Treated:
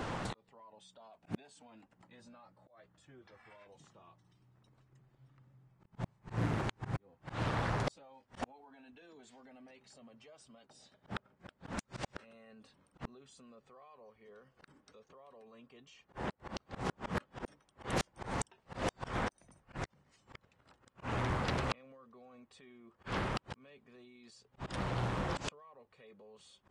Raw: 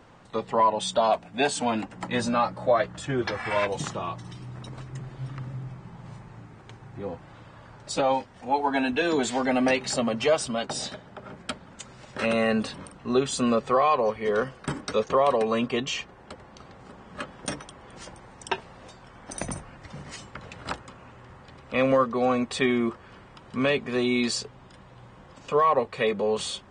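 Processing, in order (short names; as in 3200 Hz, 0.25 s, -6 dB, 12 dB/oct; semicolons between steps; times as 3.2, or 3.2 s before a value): limiter -22 dBFS, peak gain reduction 11 dB; flipped gate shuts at -34 dBFS, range -42 dB; auto swell 0.132 s; Doppler distortion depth 0.73 ms; gain +14 dB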